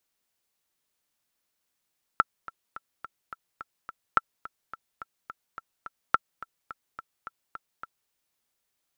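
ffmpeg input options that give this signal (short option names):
-f lavfi -i "aevalsrc='pow(10,(-6-19*gte(mod(t,7*60/213),60/213))/20)*sin(2*PI*1340*mod(t,60/213))*exp(-6.91*mod(t,60/213)/0.03)':d=5.91:s=44100"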